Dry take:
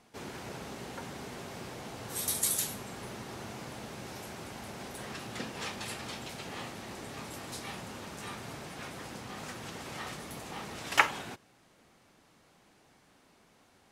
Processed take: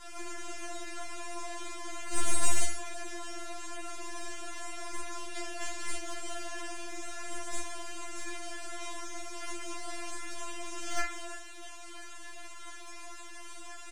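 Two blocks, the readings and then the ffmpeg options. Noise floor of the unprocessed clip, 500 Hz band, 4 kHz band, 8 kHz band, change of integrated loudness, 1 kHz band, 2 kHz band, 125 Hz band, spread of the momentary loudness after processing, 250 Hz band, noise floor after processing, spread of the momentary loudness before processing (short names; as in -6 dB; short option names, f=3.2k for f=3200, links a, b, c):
-64 dBFS, 0.0 dB, -1.5 dB, +1.0 dB, -2.0 dB, -2.0 dB, -3.5 dB, -4.5 dB, 11 LU, -2.0 dB, -43 dBFS, 14 LU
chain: -filter_complex "[0:a]aeval=exprs='val(0)+0.5*0.0266*sgn(val(0))':c=same,agate=range=-33dB:threshold=-32dB:ratio=3:detection=peak,acompressor=threshold=-48dB:ratio=1.5,aexciter=amount=9.7:drive=3:freq=6k,aresample=22050,aresample=44100,aeval=exprs='(tanh(11.2*val(0)+0.7)-tanh(0.7))/11.2':c=same,acrusher=bits=6:mix=0:aa=0.000001,asplit=2[a][b];[b]aecho=0:1:33|43:0.398|0.376[c];[a][c]amix=inputs=2:normalize=0,adynamicsmooth=sensitivity=2:basefreq=3.6k,afftfilt=real='re*4*eq(mod(b,16),0)':imag='im*4*eq(mod(b,16),0)':win_size=2048:overlap=0.75,volume=5.5dB"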